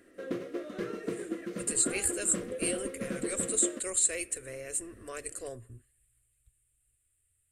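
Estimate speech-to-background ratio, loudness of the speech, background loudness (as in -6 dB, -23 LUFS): 7.0 dB, -31.0 LUFS, -38.0 LUFS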